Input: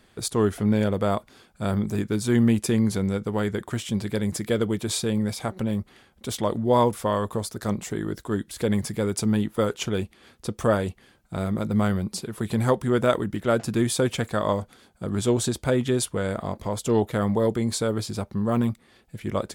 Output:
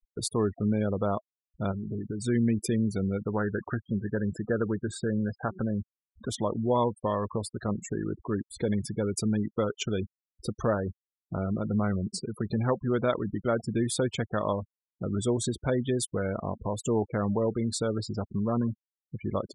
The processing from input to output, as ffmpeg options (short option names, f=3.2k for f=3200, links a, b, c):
-filter_complex "[0:a]asplit=3[a][b][c];[a]afade=t=out:st=1.71:d=0.02[d];[b]acompressor=threshold=-29dB:ratio=5:attack=3.2:release=140:knee=1:detection=peak,afade=t=in:st=1.71:d=0.02,afade=t=out:st=2.25:d=0.02[e];[c]afade=t=in:st=2.25:d=0.02[f];[d][e][f]amix=inputs=3:normalize=0,asettb=1/sr,asplit=3[g][h][i];[g]atrim=end=3.344[j];[h]atrim=start=3.34:end=6.29,asetpts=PTS-STARTPTS,afade=t=in:d=0.004:c=qsin,afade=t=out:st=2.946:d=0.004:c=qsin,highshelf=f=2k:t=q:w=3:g=-7[k];[i]atrim=start=6.286[l];[j][k]acrossfade=d=0.004:c1=hsin:c2=qsin[m];[m][l]acrossfade=d=0.004:c1=qsin:c2=hsin,acompressor=threshold=-51dB:ratio=1.5,afftfilt=real='re*gte(hypot(re,im),0.0112)':imag='im*gte(hypot(re,im),0.0112)':win_size=1024:overlap=0.75,volume=6.5dB"